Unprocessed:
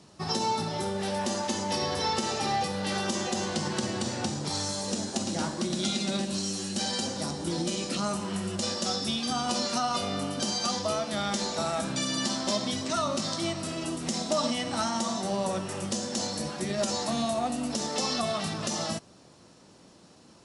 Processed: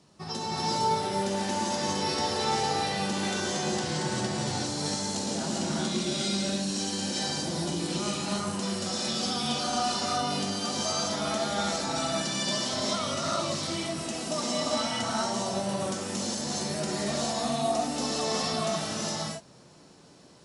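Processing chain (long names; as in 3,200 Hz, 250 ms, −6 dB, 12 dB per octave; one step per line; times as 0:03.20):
reverb whose tail is shaped and stops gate 430 ms rising, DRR −6 dB
level −6 dB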